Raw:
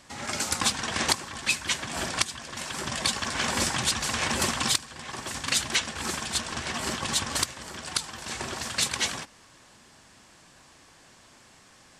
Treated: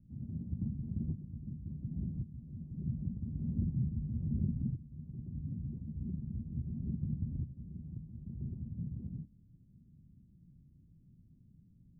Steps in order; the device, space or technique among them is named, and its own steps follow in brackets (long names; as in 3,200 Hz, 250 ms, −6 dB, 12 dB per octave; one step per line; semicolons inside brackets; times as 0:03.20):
the neighbour's flat through the wall (low-pass filter 190 Hz 24 dB per octave; parametric band 160 Hz +3.5 dB 0.62 octaves)
level +3 dB